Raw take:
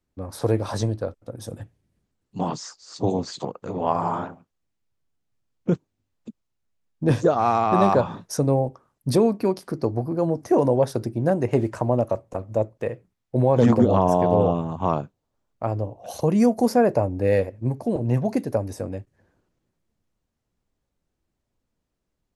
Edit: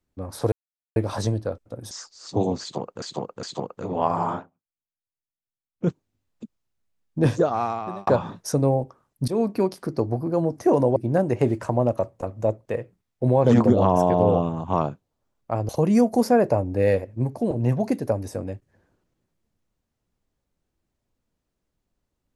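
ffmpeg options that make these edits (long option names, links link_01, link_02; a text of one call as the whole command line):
ffmpeg -i in.wav -filter_complex "[0:a]asplit=11[link_01][link_02][link_03][link_04][link_05][link_06][link_07][link_08][link_09][link_10][link_11];[link_01]atrim=end=0.52,asetpts=PTS-STARTPTS,afade=type=out:start_time=0.516:duration=0.004:curve=hsin,apad=pad_dur=0.44[link_12];[link_02]atrim=start=0.52:end=1.472,asetpts=PTS-STARTPTS,afade=type=in:duration=0.004:curve=hsin[link_13];[link_03]atrim=start=2.578:end=3.692[link_14];[link_04]atrim=start=3.278:end=3.692[link_15];[link_05]atrim=start=3.278:end=4.36,asetpts=PTS-STARTPTS,afade=type=out:start_time=0.922:duration=0.16:curve=qua:silence=0.0749894[link_16];[link_06]atrim=start=4.36:end=5.57,asetpts=PTS-STARTPTS,volume=-22.5dB[link_17];[link_07]atrim=start=5.57:end=7.92,asetpts=PTS-STARTPTS,afade=type=in:duration=0.16:curve=qua:silence=0.0749894,afade=type=out:start_time=1.57:duration=0.78[link_18];[link_08]atrim=start=7.92:end=9.13,asetpts=PTS-STARTPTS,afade=type=in:duration=0.004:curve=hsin,afade=type=out:start_time=1.206:duration=0.004:curve=hsin:silence=0.0841395[link_19];[link_09]atrim=start=9.13:end=10.812,asetpts=PTS-STARTPTS,afade=type=in:duration=0.26:curve=qsin:silence=0.0841395[link_20];[link_10]atrim=start=11.078:end=15.812[link_21];[link_11]atrim=start=16.138[link_22];[link_12][link_13]concat=n=2:v=0:a=1[link_23];[link_23][link_14]acrossfade=duration=0.004:curve1=hsin:curve2=hsin[link_24];[link_24][link_15]acrossfade=duration=0.004:curve1=hsin:curve2=hsin[link_25];[link_16][link_17][link_18][link_19][link_20]concat=n=5:v=0:a=1[link_26];[link_25][link_26]acrossfade=duration=0.004:curve1=hsin:curve2=hsin[link_27];[link_27][link_21]acrossfade=duration=0.004:curve1=hsin:curve2=hsin[link_28];[link_28][link_22]acrossfade=duration=0.004:curve1=hsin:curve2=hsin" out.wav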